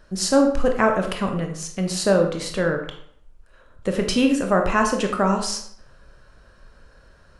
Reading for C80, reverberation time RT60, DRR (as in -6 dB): 10.0 dB, 0.65 s, 3.0 dB